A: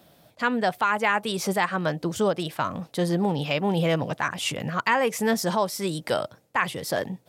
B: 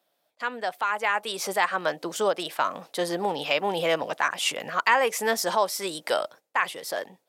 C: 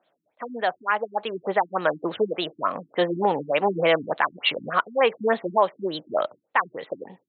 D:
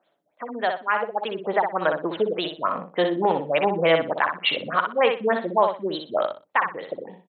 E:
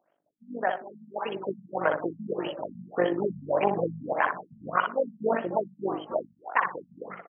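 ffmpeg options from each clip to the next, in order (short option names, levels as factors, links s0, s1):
-af "agate=range=0.316:threshold=0.00562:ratio=16:detection=peak,dynaudnorm=f=360:g=7:m=3.76,highpass=470,volume=0.562"
-filter_complex "[0:a]asplit=2[s0][s1];[s1]alimiter=limit=0.188:level=0:latency=1:release=118,volume=0.891[s2];[s0][s2]amix=inputs=2:normalize=0,afftfilt=real='re*lt(b*sr/1024,320*pow(4400/320,0.5+0.5*sin(2*PI*3.4*pts/sr)))':imag='im*lt(b*sr/1024,320*pow(4400/320,0.5+0.5*sin(2*PI*3.4*pts/sr)))':win_size=1024:overlap=0.75"
-af "aecho=1:1:61|122|183:0.501|0.11|0.0243"
-filter_complex "[0:a]tremolo=f=49:d=0.71,asplit=5[s0][s1][s2][s3][s4];[s1]adelay=273,afreqshift=140,volume=0.251[s5];[s2]adelay=546,afreqshift=280,volume=0.111[s6];[s3]adelay=819,afreqshift=420,volume=0.0484[s7];[s4]adelay=1092,afreqshift=560,volume=0.0214[s8];[s0][s5][s6][s7][s8]amix=inputs=5:normalize=0,afftfilt=real='re*lt(b*sr/1024,220*pow(3400/220,0.5+0.5*sin(2*PI*1.7*pts/sr)))':imag='im*lt(b*sr/1024,220*pow(3400/220,0.5+0.5*sin(2*PI*1.7*pts/sr)))':win_size=1024:overlap=0.75"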